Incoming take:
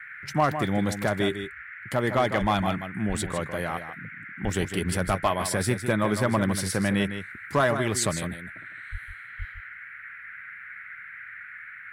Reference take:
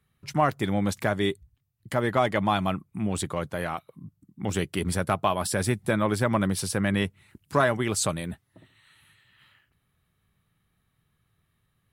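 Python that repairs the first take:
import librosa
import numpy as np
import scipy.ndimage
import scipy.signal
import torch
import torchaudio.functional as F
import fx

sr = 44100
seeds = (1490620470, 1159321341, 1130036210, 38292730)

y = fx.fix_declip(x, sr, threshold_db=-13.5)
y = fx.fix_deplosive(y, sr, at_s=(2.4, 3.08, 4.43, 5.06, 8.91, 9.38))
y = fx.noise_reduce(y, sr, print_start_s=11.41, print_end_s=11.91, reduce_db=30.0)
y = fx.fix_echo_inverse(y, sr, delay_ms=156, level_db=-9.5)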